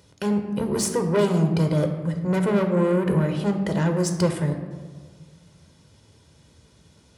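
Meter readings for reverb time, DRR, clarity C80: 1.6 s, 5.0 dB, 9.0 dB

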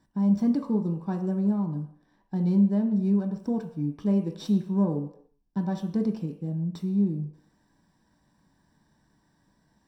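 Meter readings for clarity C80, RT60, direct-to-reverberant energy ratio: 12.0 dB, no single decay rate, 3.0 dB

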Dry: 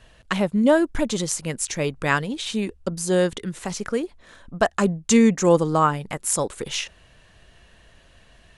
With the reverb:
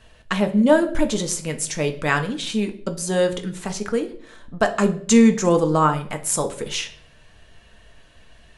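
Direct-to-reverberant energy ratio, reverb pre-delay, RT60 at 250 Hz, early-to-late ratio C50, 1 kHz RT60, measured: 5.0 dB, 4 ms, 0.75 s, 13.5 dB, 0.45 s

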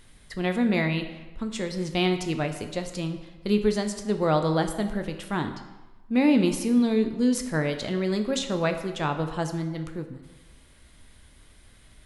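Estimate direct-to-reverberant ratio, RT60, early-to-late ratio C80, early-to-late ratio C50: 6.5 dB, 1.2 s, 11.0 dB, 9.0 dB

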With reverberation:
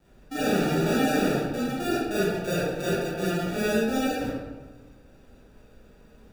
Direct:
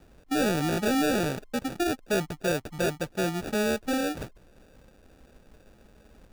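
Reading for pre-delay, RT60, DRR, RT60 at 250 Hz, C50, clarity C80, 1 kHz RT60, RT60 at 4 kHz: 27 ms, 1.3 s, -9.5 dB, 1.5 s, -3.5 dB, 0.5 dB, 1.2 s, 0.75 s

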